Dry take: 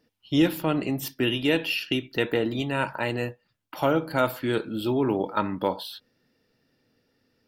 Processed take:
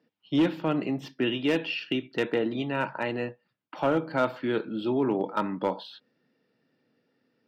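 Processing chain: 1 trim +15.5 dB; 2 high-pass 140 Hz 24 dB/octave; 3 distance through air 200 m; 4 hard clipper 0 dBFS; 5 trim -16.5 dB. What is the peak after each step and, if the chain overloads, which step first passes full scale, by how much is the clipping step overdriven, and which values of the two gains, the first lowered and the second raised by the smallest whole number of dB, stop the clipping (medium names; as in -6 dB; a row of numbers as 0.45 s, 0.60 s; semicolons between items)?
+6.5 dBFS, +6.0 dBFS, +5.0 dBFS, 0.0 dBFS, -16.5 dBFS; step 1, 5.0 dB; step 1 +10.5 dB, step 5 -11.5 dB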